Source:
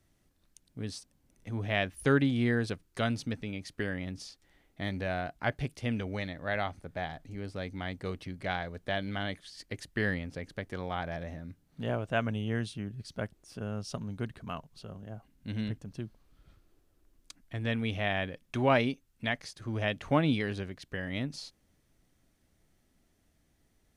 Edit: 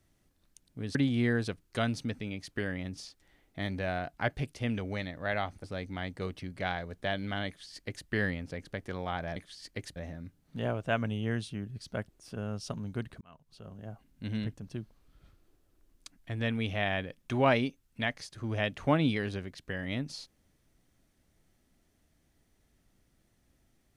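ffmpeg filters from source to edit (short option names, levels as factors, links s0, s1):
-filter_complex "[0:a]asplit=6[s0][s1][s2][s3][s4][s5];[s0]atrim=end=0.952[s6];[s1]atrim=start=2.168:end=6.862[s7];[s2]atrim=start=7.478:end=11.202[s8];[s3]atrim=start=9.308:end=9.912[s9];[s4]atrim=start=11.198:end=14.45,asetpts=PTS-STARTPTS,afade=t=out:st=3.248:d=0.004:c=hsin[s10];[s5]atrim=start=14.45,asetpts=PTS-STARTPTS,afade=t=in:d=0.64[s11];[s6][s7]acrossfade=d=0.004:c1=hsin:c2=hsin[s12];[s12][s8]acrossfade=d=0.004:c1=hsin:c2=hsin[s13];[s13][s9]acrossfade=d=0.004:c1=hsin:c2=hsin[s14];[s10][s11]concat=n=2:v=0:a=1[s15];[s14][s15]acrossfade=d=0.004:c1=hsin:c2=hsin"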